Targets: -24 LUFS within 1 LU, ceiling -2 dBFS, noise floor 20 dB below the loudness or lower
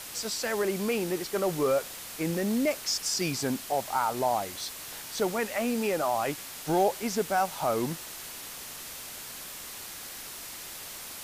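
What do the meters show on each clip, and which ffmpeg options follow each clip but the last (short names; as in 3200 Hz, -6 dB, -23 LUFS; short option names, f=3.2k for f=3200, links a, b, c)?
noise floor -42 dBFS; noise floor target -51 dBFS; loudness -30.5 LUFS; peak -14.5 dBFS; loudness target -24.0 LUFS
-> -af "afftdn=nr=9:nf=-42"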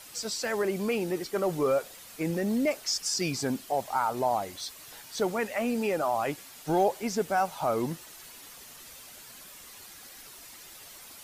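noise floor -49 dBFS; noise floor target -50 dBFS
-> -af "afftdn=nr=6:nf=-49"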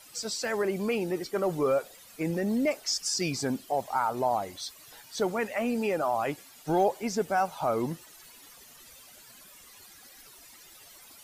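noise floor -53 dBFS; loudness -29.5 LUFS; peak -14.5 dBFS; loudness target -24.0 LUFS
-> -af "volume=5.5dB"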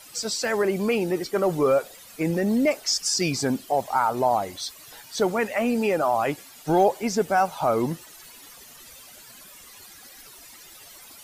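loudness -24.0 LUFS; peak -9.0 dBFS; noise floor -47 dBFS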